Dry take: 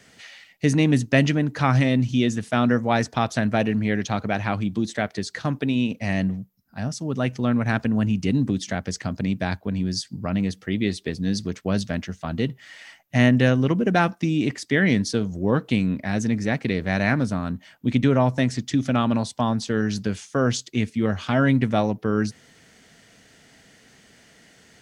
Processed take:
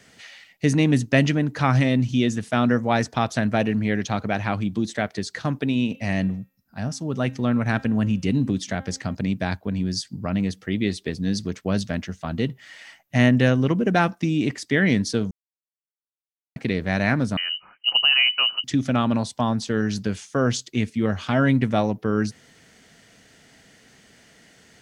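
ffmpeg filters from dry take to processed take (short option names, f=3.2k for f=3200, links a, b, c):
-filter_complex "[0:a]asettb=1/sr,asplit=3[a][b][c];[a]atrim=end=5.804[d];[b]atrim=start=5.8:end=9.15,asetpts=PTS-STARTPTS,afade=t=in:d=0.004:c=qsin,afade=t=out:st=3.346:d=0.004:c=qsin,bandreject=f=266.3:t=h:w=4,bandreject=f=532.6:t=h:w=4,bandreject=f=798.9:t=h:w=4,bandreject=f=1.0652k:t=h:w=4,bandreject=f=1.3315k:t=h:w=4,bandreject=f=1.5978k:t=h:w=4,bandreject=f=1.8641k:t=h:w=4,bandreject=f=2.1304k:t=h:w=4,bandreject=f=2.3967k:t=h:w=4,bandreject=f=2.663k:t=h:w=4,bandreject=f=2.9293k:t=h:w=4,bandreject=f=3.1956k:t=h:w=4,bandreject=f=3.4619k:t=h:w=4,bandreject=f=3.7282k:t=h:w=4,bandreject=f=3.9945k:t=h:w=4[e];[c]atrim=start=9.146[f];[d][e]acrossfade=d=0.004:c1=hsin:c2=qsin[g];[g][f]acrossfade=d=0.004:c1=qsin:c2=hsin,asettb=1/sr,asplit=3[h][i][j];[h]atrim=end=17.374[k];[i]atrim=start=17.37:end=18.64,asetpts=PTS-STARTPTS,afade=t=in:d=0.004:c=qsin,afade=t=out:st=1.266:d=0.004:c=qsin,lowpass=f=2.6k:t=q:w=0.5098,lowpass=f=2.6k:t=q:w=0.6013,lowpass=f=2.6k:t=q:w=0.9,lowpass=f=2.6k:t=q:w=2.563,afreqshift=-3100[l];[j]atrim=start=18.636[m];[k][l]acrossfade=d=0.004:c1=hsin:c2=qsin[n];[n][m]acrossfade=d=0.004:c1=qsin:c2=hsin,asplit=3[o][p][q];[o]atrim=end=15.31,asetpts=PTS-STARTPTS,afade=t=out:st=15.306:d=0.004:c=hsin[r];[p]atrim=start=15.31:end=16.56,asetpts=PTS-STARTPTS,volume=0[s];[q]atrim=start=16.56,asetpts=PTS-STARTPTS,afade=t=in:d=0.004:c=hsin[t];[r][s][t]concat=n=3:v=0:a=1"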